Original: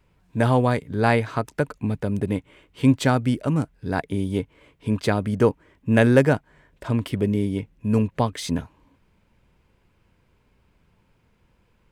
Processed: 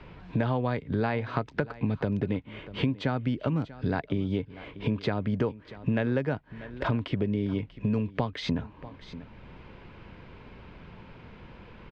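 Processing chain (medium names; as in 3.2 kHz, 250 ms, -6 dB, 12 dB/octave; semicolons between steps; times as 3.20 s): low-pass 4.3 kHz 24 dB/octave; compression 6:1, threshold -32 dBFS, peak gain reduction 20 dB; delay 640 ms -20 dB; three bands compressed up and down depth 40%; trim +6.5 dB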